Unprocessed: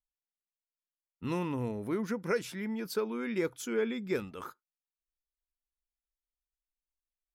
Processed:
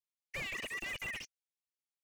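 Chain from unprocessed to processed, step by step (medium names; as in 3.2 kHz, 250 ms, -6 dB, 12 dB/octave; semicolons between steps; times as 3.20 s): mistuned SSB +320 Hz 210–2600 Hz; wide varispeed 3.61×; slew-rate limiter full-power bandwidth 21 Hz; trim +2 dB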